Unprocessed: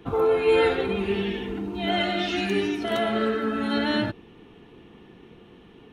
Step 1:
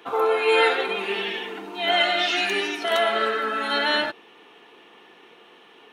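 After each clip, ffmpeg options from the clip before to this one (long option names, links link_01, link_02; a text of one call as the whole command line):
ffmpeg -i in.wav -af "highpass=680,volume=7dB" out.wav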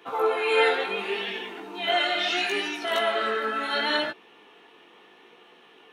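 ffmpeg -i in.wav -af "flanger=delay=16:depth=6.7:speed=0.73" out.wav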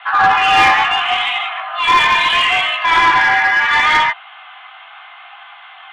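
ffmpeg -i in.wav -filter_complex "[0:a]highpass=frequency=450:width_type=q:width=0.5412,highpass=frequency=450:width_type=q:width=1.307,lowpass=frequency=3000:width_type=q:width=0.5176,lowpass=frequency=3000:width_type=q:width=0.7071,lowpass=frequency=3000:width_type=q:width=1.932,afreqshift=330,asplit=2[link_01][link_02];[link_02]highpass=frequency=720:poles=1,volume=17dB,asoftclip=type=tanh:threshold=-10dB[link_03];[link_01][link_03]amix=inputs=2:normalize=0,lowpass=frequency=2300:poles=1,volume=-6dB,volume=8.5dB" out.wav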